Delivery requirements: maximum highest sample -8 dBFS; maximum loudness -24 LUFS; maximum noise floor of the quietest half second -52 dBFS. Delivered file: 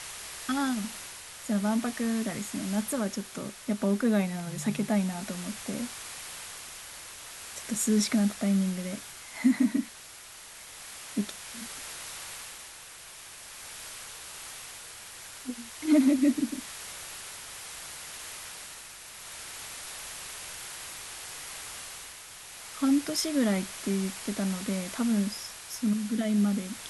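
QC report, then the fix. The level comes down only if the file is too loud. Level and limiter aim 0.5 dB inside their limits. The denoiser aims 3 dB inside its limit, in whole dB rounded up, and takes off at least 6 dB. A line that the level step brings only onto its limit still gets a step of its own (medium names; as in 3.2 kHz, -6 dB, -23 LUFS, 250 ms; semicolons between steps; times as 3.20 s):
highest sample -12.5 dBFS: pass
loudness -31.0 LUFS: pass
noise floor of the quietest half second -47 dBFS: fail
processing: noise reduction 8 dB, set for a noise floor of -47 dBFS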